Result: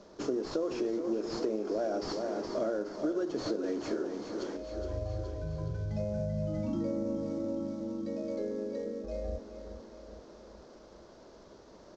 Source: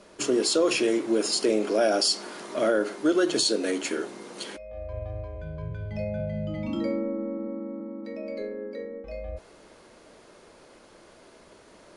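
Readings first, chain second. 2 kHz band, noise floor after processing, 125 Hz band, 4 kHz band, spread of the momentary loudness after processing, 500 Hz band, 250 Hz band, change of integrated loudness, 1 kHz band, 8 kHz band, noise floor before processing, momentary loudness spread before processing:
-15.0 dB, -54 dBFS, -1.0 dB, -18.5 dB, 20 LU, -6.5 dB, -5.5 dB, -7.5 dB, -8.0 dB, -20.5 dB, -53 dBFS, 15 LU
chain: CVSD coder 32 kbps; peaking EQ 2.5 kHz -14 dB 1.5 oct; on a send: feedback delay 418 ms, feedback 58%, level -11 dB; on the sum: dynamic bell 3.8 kHz, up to -5 dB, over -54 dBFS, Q 1.3; compression 6:1, threshold -29 dBFS, peak gain reduction 10 dB

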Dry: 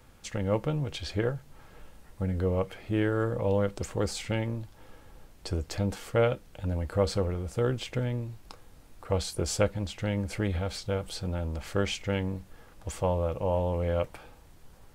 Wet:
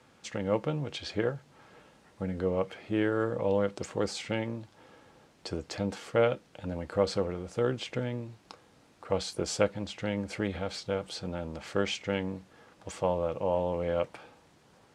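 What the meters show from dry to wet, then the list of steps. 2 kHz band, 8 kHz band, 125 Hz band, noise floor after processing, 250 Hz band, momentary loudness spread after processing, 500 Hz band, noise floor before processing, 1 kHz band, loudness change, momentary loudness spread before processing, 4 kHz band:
0.0 dB, -3.0 dB, -7.0 dB, -62 dBFS, -1.0 dB, 10 LU, 0.0 dB, -55 dBFS, 0.0 dB, -1.5 dB, 8 LU, -0.5 dB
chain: band-pass 160–7100 Hz

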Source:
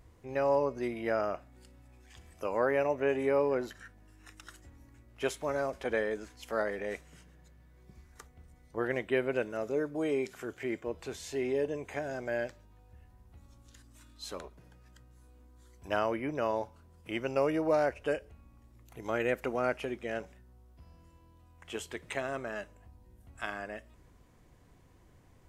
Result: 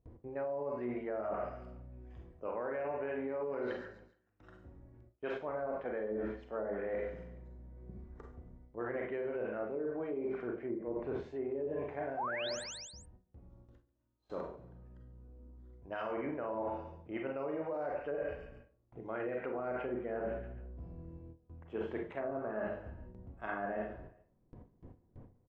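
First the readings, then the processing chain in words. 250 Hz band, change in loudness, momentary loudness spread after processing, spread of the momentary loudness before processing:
-4.5 dB, -6.0 dB, 18 LU, 15 LU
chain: bass shelf 150 Hz -4.5 dB; Schroeder reverb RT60 0.46 s, combs from 33 ms, DRR 1.5 dB; painted sound rise, 12.17–12.64 s, 680–9300 Hz -26 dBFS; level-controlled noise filter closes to 480 Hz, open at -20 dBFS; gate with hold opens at -52 dBFS; peak limiter -22.5 dBFS, peak gain reduction 9 dB; gain riding within 4 dB 0.5 s; on a send: feedback delay 140 ms, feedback 40%, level -20.5 dB; on the sum: low-pass that closes with the level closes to 380 Hz, closed at -26 dBFS; treble shelf 2.4 kHz +9.5 dB; reverse; compression 10:1, threshold -41 dBFS, peak gain reduction 15 dB; reverse; endings held to a fixed fall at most 270 dB/s; trim +6.5 dB

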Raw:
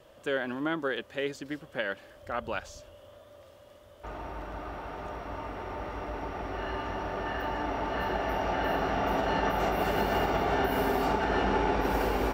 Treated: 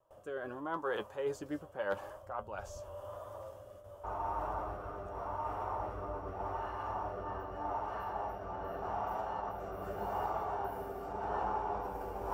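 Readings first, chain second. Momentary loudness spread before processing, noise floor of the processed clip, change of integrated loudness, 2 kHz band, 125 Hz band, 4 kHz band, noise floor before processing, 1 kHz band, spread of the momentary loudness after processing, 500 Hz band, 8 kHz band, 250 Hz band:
12 LU, -54 dBFS, -8.5 dB, -13.5 dB, -9.5 dB, under -15 dB, -54 dBFS, -6.0 dB, 8 LU, -8.0 dB, under -10 dB, -13.0 dB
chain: gate with hold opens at -45 dBFS; graphic EQ 250/1000/2000/4000 Hz -9/+12/-11/-11 dB; reverse; compression 12:1, threshold -37 dBFS, peak gain reduction 17.5 dB; reverse; rotary cabinet horn 0.85 Hz; hard clipper -29.5 dBFS, distortion -37 dB; flange 0.87 Hz, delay 9.3 ms, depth 1.1 ms, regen +47%; trim +9.5 dB

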